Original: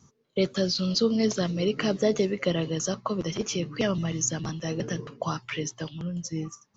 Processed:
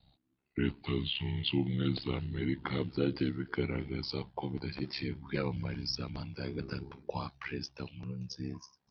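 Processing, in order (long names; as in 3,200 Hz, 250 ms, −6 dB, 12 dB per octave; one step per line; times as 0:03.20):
gliding playback speed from 64% → 88%
ring modulation 34 Hz
level −5 dB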